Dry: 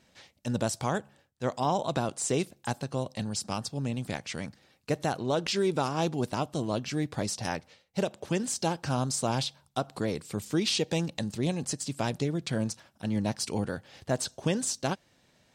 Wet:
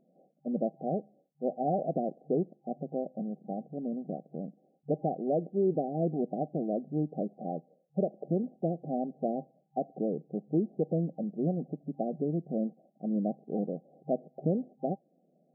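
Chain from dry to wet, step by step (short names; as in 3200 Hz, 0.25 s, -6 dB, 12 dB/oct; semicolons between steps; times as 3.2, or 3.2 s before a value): FFT band-pass 150–790 Hz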